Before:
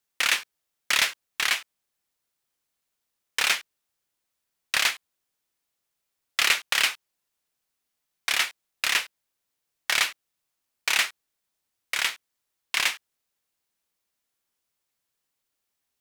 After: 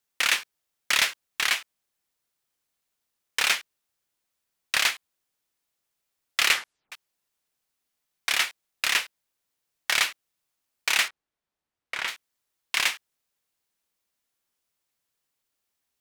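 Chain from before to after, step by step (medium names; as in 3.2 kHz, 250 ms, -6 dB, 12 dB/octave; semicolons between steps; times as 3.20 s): 6.51 s: tape stop 0.41 s; 11.08–12.08 s: low-pass 1.7 kHz 6 dB/octave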